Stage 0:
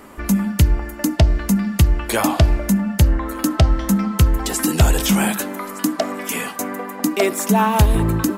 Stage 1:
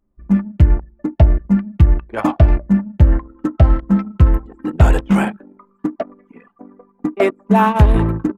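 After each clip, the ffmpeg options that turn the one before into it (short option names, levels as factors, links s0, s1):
-filter_complex "[0:a]acrossover=split=2600[s0][s1];[s1]acompressor=threshold=0.0141:ratio=4:attack=1:release=60[s2];[s0][s2]amix=inputs=2:normalize=0,agate=range=0.316:threshold=0.141:ratio=16:detection=peak,anlmdn=63.1,volume=1.5"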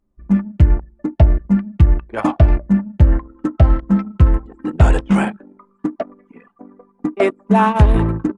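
-ar 24000 -c:a libmp3lame -b:a 112k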